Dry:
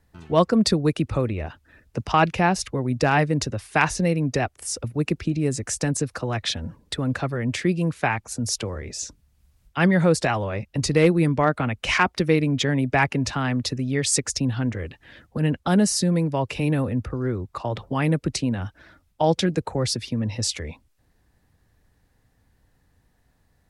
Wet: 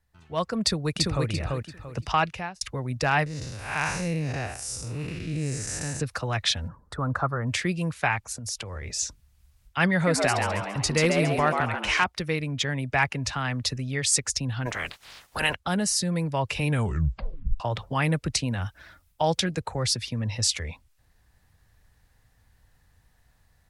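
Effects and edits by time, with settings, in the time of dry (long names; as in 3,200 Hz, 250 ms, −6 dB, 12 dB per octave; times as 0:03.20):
0:00.62–0:01.28: delay throw 340 ms, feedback 25%, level −2 dB
0:02.00–0:02.61: fade out
0:03.26–0:06.00: spectrum smeared in time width 202 ms
0:06.68–0:07.47: high shelf with overshoot 1,800 Hz −12.5 dB, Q 3
0:08.24–0:08.97: downward compressor, threshold −29 dBFS
0:09.93–0:12.04: echo with shifted repeats 137 ms, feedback 45%, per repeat +100 Hz, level −4 dB
0:14.65–0:15.54: ceiling on every frequency bin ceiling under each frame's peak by 30 dB
0:16.68: tape stop 0.92 s
0:18.48–0:19.40: high-shelf EQ 10,000 Hz +10 dB
whole clip: parametric band 300 Hz −10.5 dB 1.9 octaves; automatic gain control; level −8 dB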